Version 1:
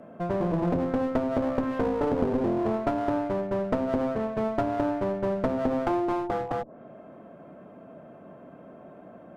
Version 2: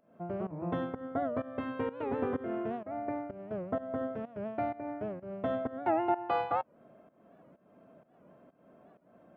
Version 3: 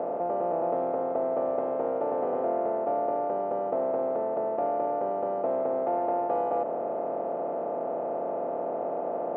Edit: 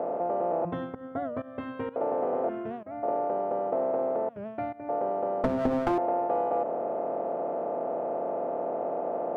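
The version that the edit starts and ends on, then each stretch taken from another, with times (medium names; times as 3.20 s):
3
0.65–1.96 s: from 2
2.49–3.03 s: from 2
4.29–4.89 s: from 2
5.44–5.98 s: from 1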